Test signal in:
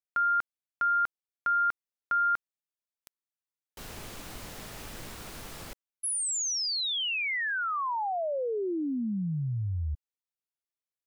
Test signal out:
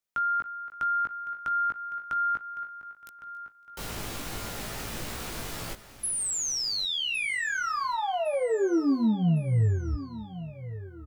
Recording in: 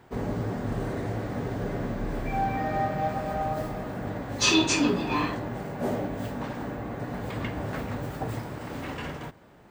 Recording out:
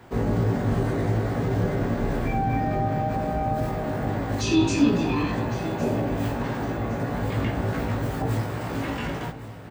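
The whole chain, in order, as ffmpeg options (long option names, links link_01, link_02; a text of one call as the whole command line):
ffmpeg -i in.wav -filter_complex "[0:a]asplit=2[link_01][link_02];[link_02]adelay=18,volume=-3.5dB[link_03];[link_01][link_03]amix=inputs=2:normalize=0,asplit=2[link_04][link_05];[link_05]adelay=279,lowpass=frequency=5000:poles=1,volume=-20dB,asplit=2[link_06][link_07];[link_07]adelay=279,lowpass=frequency=5000:poles=1,volume=0.54,asplit=2[link_08][link_09];[link_09]adelay=279,lowpass=frequency=5000:poles=1,volume=0.54,asplit=2[link_10][link_11];[link_11]adelay=279,lowpass=frequency=5000:poles=1,volume=0.54[link_12];[link_06][link_08][link_10][link_12]amix=inputs=4:normalize=0[link_13];[link_04][link_13]amix=inputs=2:normalize=0,acrossover=split=380[link_14][link_15];[link_15]acompressor=threshold=-31dB:ratio=5:attack=0.14:release=132:knee=2.83:detection=peak[link_16];[link_14][link_16]amix=inputs=2:normalize=0,asplit=2[link_17][link_18];[link_18]aecho=0:1:1109|2218|3327:0.178|0.0676|0.0257[link_19];[link_17][link_19]amix=inputs=2:normalize=0,volume=5dB" out.wav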